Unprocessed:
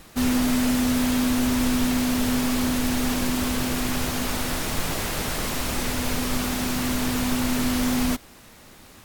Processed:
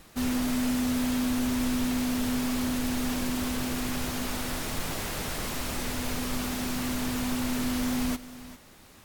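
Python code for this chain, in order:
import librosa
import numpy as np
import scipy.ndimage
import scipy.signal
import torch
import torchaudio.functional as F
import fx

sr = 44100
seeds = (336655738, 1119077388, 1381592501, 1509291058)

p1 = x + 10.0 ** (-16.5 / 20.0) * np.pad(x, (int(400 * sr / 1000.0), 0))[:len(x)]
p2 = 10.0 ** (-20.5 / 20.0) * np.tanh(p1 / 10.0 ** (-20.5 / 20.0))
p3 = p1 + (p2 * 10.0 ** (-7.0 / 20.0))
y = p3 * 10.0 ** (-8.5 / 20.0)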